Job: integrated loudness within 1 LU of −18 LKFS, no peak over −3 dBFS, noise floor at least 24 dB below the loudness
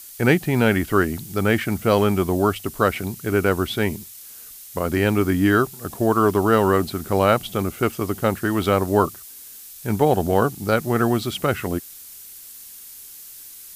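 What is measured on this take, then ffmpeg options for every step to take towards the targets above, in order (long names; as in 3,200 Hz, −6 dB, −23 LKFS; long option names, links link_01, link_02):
background noise floor −41 dBFS; target noise floor −45 dBFS; integrated loudness −21.0 LKFS; sample peak −3.0 dBFS; target loudness −18.0 LKFS
→ -af "afftdn=noise_reduction=6:noise_floor=-41"
-af "volume=3dB,alimiter=limit=-3dB:level=0:latency=1"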